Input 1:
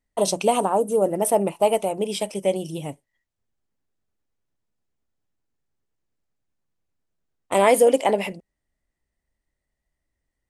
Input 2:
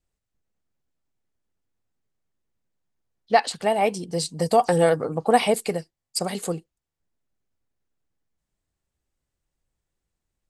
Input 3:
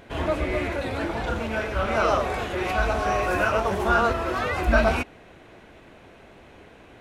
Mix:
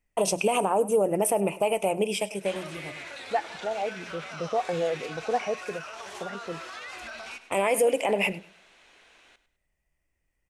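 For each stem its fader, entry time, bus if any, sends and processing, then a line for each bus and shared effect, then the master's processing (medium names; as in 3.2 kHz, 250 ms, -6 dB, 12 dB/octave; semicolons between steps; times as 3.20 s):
+1.5 dB, 0.00 s, no send, echo send -20.5 dB, compression 2:1, threshold -21 dBFS, peak gain reduction 6 dB; graphic EQ with 31 bands 250 Hz -5 dB, 2.5 kHz +11 dB, 4 kHz -10 dB; auto duck -17 dB, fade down 1.35 s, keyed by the second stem
-9.0 dB, 0.00 s, no send, no echo send, resonances exaggerated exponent 1.5; steep low-pass 2.6 kHz
-9.0 dB, 2.35 s, no send, echo send -14 dB, frequency weighting ITU-R 468; peak limiter -18 dBFS, peak gain reduction 11.5 dB; compression, threshold -28 dBFS, peak gain reduction 5.5 dB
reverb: none
echo: feedback delay 102 ms, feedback 29%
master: peak limiter -14 dBFS, peak gain reduction 8 dB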